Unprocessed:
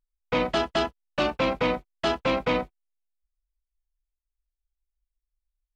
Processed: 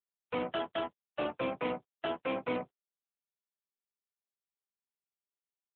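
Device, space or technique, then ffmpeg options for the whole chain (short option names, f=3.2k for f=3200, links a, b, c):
mobile call with aggressive noise cancelling: -filter_complex "[0:a]asplit=3[a][b][c];[a]afade=t=out:st=0.65:d=0.02[d];[b]highpass=56,afade=t=in:st=0.65:d=0.02,afade=t=out:st=1.69:d=0.02[e];[c]afade=t=in:st=1.69:d=0.02[f];[d][e][f]amix=inputs=3:normalize=0,highpass=f=110:w=0.5412,highpass=f=110:w=1.3066,afftdn=nr=33:nf=-42,volume=-8dB" -ar 8000 -c:a libopencore_amrnb -b:a 7950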